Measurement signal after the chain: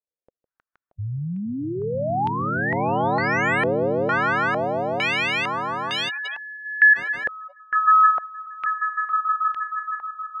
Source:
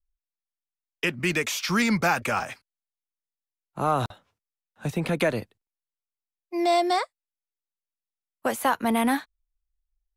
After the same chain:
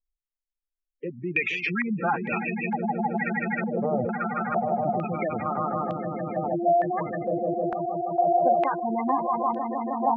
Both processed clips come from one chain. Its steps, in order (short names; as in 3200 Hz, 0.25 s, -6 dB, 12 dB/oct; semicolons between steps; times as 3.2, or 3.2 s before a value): swelling echo 0.157 s, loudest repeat 8, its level -6.5 dB; spectral gate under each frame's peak -10 dB strong; stepped low-pass 2.2 Hz 520–3200 Hz; gain -5 dB